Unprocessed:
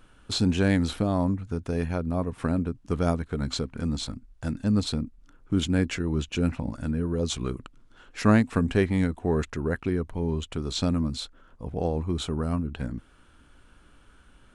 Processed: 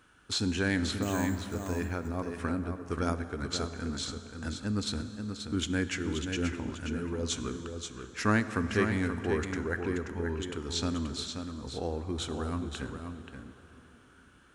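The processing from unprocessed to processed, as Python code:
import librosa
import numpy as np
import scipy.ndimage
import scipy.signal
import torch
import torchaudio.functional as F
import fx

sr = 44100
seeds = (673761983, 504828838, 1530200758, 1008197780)

p1 = fx.resample_bad(x, sr, factor=6, down='none', up='hold', at=(1.02, 1.55))
p2 = fx.graphic_eq_15(p1, sr, hz=(160, 630, 1600, 6300), db=(-10, -5, 5, 4))
p3 = p2 + fx.echo_single(p2, sr, ms=531, db=-7.0, dry=0)
p4 = fx.dmg_noise_colour(p3, sr, seeds[0], colour='brown', level_db=-60.0)
p5 = scipy.signal.sosfilt(scipy.signal.butter(2, 74.0, 'highpass', fs=sr, output='sos'), p4)
p6 = fx.rev_plate(p5, sr, seeds[1], rt60_s=4.3, hf_ratio=0.6, predelay_ms=0, drr_db=10.5)
y = p6 * 10.0 ** (-4.0 / 20.0)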